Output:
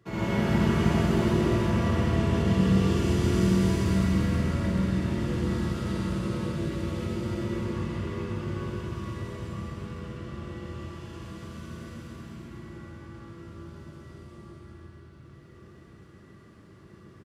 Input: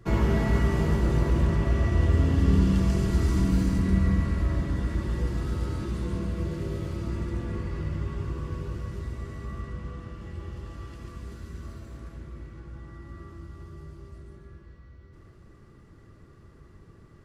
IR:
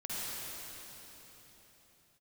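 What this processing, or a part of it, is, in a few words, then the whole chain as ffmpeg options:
PA in a hall: -filter_complex "[0:a]highpass=120,equalizer=frequency=3000:width_type=o:width=0.91:gain=4,aecho=1:1:132:0.501[link_01];[1:a]atrim=start_sample=2205[link_02];[link_01][link_02]afir=irnorm=-1:irlink=0,volume=-2dB"

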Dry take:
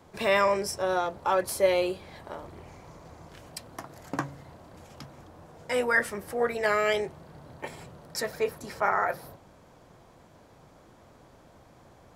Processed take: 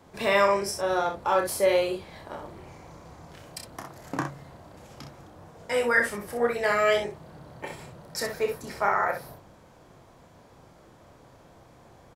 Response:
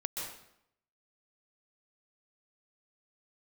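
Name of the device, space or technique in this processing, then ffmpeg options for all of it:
slapback doubling: -filter_complex "[0:a]asplit=3[link_01][link_02][link_03];[link_02]adelay=30,volume=-6dB[link_04];[link_03]adelay=63,volume=-7dB[link_05];[link_01][link_04][link_05]amix=inputs=3:normalize=0"

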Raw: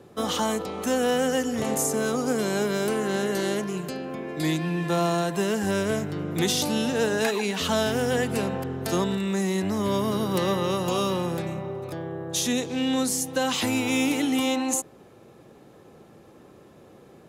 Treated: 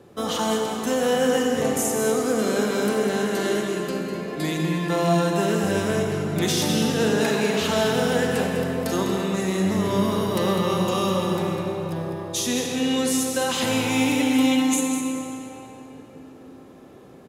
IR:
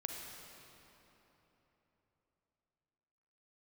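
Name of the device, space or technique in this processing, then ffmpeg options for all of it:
cave: -filter_complex "[0:a]aecho=1:1:201:0.355[link_01];[1:a]atrim=start_sample=2205[link_02];[link_01][link_02]afir=irnorm=-1:irlink=0,volume=2.5dB"

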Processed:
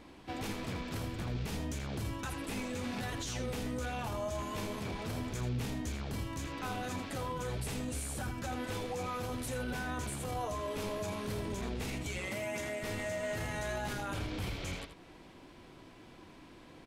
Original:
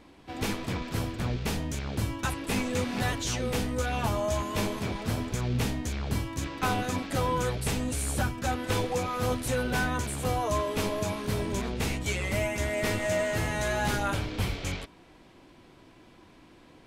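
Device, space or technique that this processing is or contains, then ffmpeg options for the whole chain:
stacked limiters: -filter_complex "[0:a]asettb=1/sr,asplit=3[link_01][link_02][link_03];[link_01]atrim=end=12.184[link_04];[link_02]atrim=start=12.18:end=12.8,asetpts=PTS-STARTPTS,afade=type=in:duration=0.004:curve=qsin,afade=type=out:start_time=0.616:duration=0.004:curve=qsin,highpass=150[link_05];[link_03]atrim=start=12.796[link_06];[link_04][link_05]acrossfade=duration=0.004:curve1=hsin:curve2=qsin[link_07];[link_07][link_06]acrossfade=duration=0.004:curve1=qsin:curve2=hsin,alimiter=limit=-24dB:level=0:latency=1:release=11,alimiter=level_in=6dB:limit=-24dB:level=0:latency=1:release=212,volume=-6dB,aecho=1:1:81:0.316"

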